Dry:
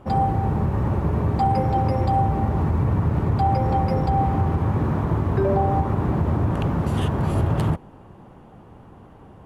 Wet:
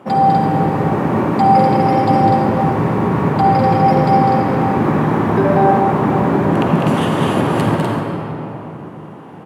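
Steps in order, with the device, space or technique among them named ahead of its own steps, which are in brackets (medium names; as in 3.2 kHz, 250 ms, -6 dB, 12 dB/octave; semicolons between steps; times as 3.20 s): stadium PA (high-pass 160 Hz 24 dB/octave; peaking EQ 2.1 kHz +3.5 dB 0.9 oct; loudspeakers at several distances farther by 69 m -5 dB, 85 m -5 dB; reverberation RT60 3.4 s, pre-delay 47 ms, DRR 1 dB); trim +6.5 dB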